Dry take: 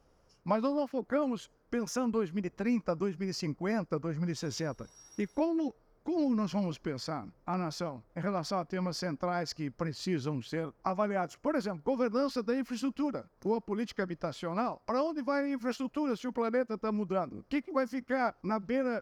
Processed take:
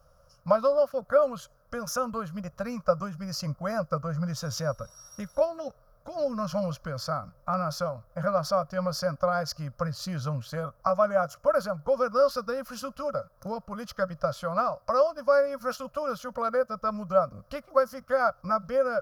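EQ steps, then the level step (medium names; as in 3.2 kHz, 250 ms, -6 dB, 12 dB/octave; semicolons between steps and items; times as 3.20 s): FFT filter 150 Hz 0 dB, 380 Hz -27 dB, 560 Hz +6 dB, 840 Hz -9 dB, 1.3 kHz +6 dB, 2 kHz -14 dB, 5.6 kHz -1 dB, 8 kHz -5 dB, 11 kHz +6 dB; +7.0 dB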